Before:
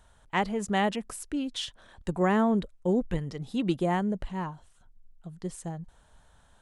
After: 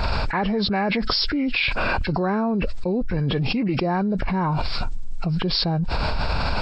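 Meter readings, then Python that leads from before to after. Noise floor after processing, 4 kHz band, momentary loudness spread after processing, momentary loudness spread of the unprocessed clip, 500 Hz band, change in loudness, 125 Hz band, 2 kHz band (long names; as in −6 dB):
−26 dBFS, +14.0 dB, 5 LU, 14 LU, +4.5 dB, +6.5 dB, +10.5 dB, +10.5 dB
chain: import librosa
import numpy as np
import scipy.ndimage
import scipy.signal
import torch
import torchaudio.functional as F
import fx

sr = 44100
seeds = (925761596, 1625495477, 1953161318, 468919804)

y = fx.freq_compress(x, sr, knee_hz=1300.0, ratio=1.5)
y = fx.env_flatten(y, sr, amount_pct=100)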